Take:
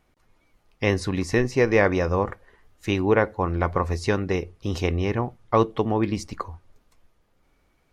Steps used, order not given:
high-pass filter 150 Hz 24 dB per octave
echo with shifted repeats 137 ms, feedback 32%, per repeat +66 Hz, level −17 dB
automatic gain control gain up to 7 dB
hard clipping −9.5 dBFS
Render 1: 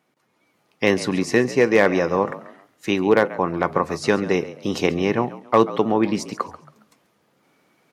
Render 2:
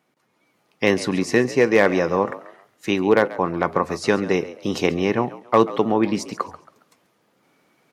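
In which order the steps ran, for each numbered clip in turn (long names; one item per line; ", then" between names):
echo with shifted repeats, then hard clipping, then high-pass filter, then automatic gain control
hard clipping, then high-pass filter, then echo with shifted repeats, then automatic gain control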